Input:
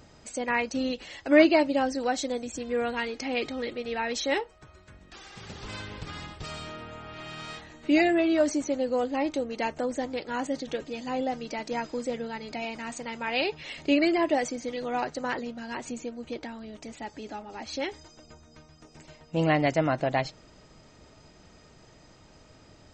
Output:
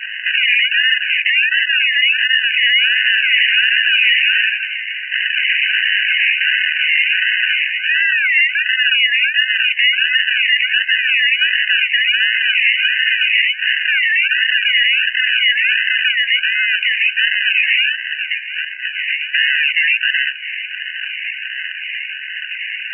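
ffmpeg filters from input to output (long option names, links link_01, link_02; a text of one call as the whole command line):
ffmpeg -i in.wav -filter_complex "[0:a]flanger=delay=18.5:depth=3.4:speed=0.45,afreqshift=17,acrusher=samples=32:mix=1:aa=0.000001:lfo=1:lforange=19.2:lforate=1.4,equalizer=frequency=1600:width=0.65:gain=12.5,acompressor=threshold=-32dB:ratio=10,lowpass=frequency=2900:width_type=q:width=0.5098,lowpass=frequency=2900:width_type=q:width=0.6013,lowpass=frequency=2900:width_type=q:width=0.9,lowpass=frequency=2900:width_type=q:width=2.563,afreqshift=-3400,equalizer=frequency=450:width=0.59:gain=6.5,bandreject=frequency=2300:width=24,asettb=1/sr,asplit=3[link_01][link_02][link_03];[link_01]atrim=end=2.884[link_04];[link_02]atrim=start=2.88:end=5.27,asetpts=PTS-STARTPTS,afade=type=in:duration=0.004:curve=qsin,afade=type=out:start_time=2.386:duration=0.004:curve=qsin,asplit=7[link_05][link_06][link_07][link_08][link_09][link_10][link_11];[link_06]adelay=82,afreqshift=-96,volume=-7dB[link_12];[link_07]adelay=164,afreqshift=-192,volume=-13.6dB[link_13];[link_08]adelay=246,afreqshift=-288,volume=-20.1dB[link_14];[link_09]adelay=328,afreqshift=-384,volume=-26.7dB[link_15];[link_10]adelay=410,afreqshift=-480,volume=-33.2dB[link_16];[link_11]adelay=492,afreqshift=-576,volume=-39.8dB[link_17];[link_05][link_12][link_13][link_14][link_15][link_16][link_17]amix=inputs=7:normalize=0,atrim=end_sample=105399[link_18];[link_03]atrim=start=5.266[link_19];[link_04][link_18]acrossfade=duration=0.004:curve1=hsin:curve2=qsin[link_20];[link_20][link_19]acrossfade=duration=0.004:curve1=qsin:curve2=hsin,alimiter=level_in=31.5dB:limit=-1dB:release=50:level=0:latency=1,afftfilt=real='re*eq(mod(floor(b*sr/1024/1500),2),1)':imag='im*eq(mod(floor(b*sr/1024/1500),2),1)':win_size=1024:overlap=0.75,volume=-1dB" out.wav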